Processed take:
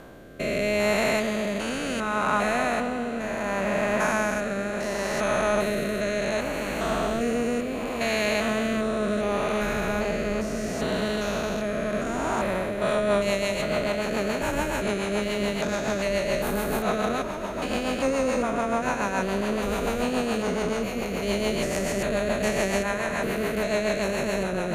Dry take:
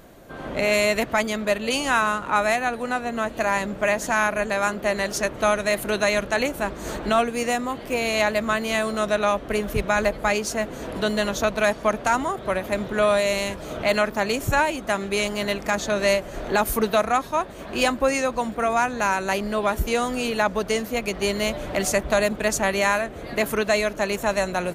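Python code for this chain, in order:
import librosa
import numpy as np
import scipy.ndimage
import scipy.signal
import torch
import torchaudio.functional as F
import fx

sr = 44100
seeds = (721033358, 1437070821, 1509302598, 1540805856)

y = fx.spec_steps(x, sr, hold_ms=400)
y = fx.echo_wet_lowpass(y, sr, ms=443, feedback_pct=82, hz=2900.0, wet_db=-13.0)
y = fx.rotary_switch(y, sr, hz=0.7, then_hz=7.0, switch_at_s=12.44)
y = F.gain(torch.from_numpy(y), 3.0).numpy()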